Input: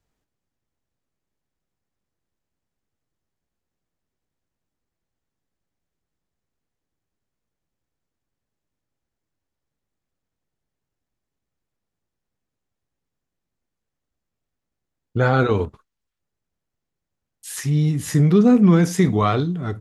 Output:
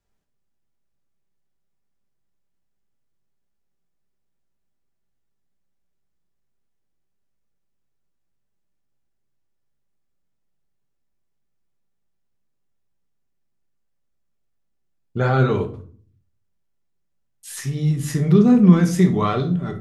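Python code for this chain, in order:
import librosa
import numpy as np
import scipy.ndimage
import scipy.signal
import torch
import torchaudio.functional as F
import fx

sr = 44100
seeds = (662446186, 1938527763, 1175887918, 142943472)

y = fx.room_shoebox(x, sr, seeds[0], volume_m3=440.0, walls='furnished', distance_m=1.2)
y = F.gain(torch.from_numpy(y), -3.0).numpy()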